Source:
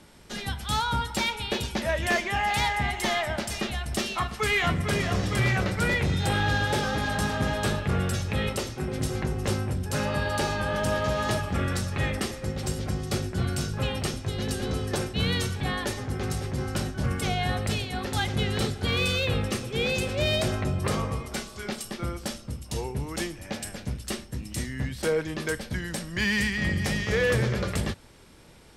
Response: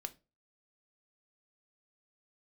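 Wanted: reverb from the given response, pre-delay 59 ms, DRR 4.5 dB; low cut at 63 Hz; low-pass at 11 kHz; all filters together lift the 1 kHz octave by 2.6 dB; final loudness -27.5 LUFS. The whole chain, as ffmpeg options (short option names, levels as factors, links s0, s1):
-filter_complex "[0:a]highpass=63,lowpass=11000,equalizer=f=1000:t=o:g=3.5,asplit=2[s0][s1];[1:a]atrim=start_sample=2205,adelay=59[s2];[s1][s2]afir=irnorm=-1:irlink=0,volume=0.841[s3];[s0][s3]amix=inputs=2:normalize=0,volume=0.841"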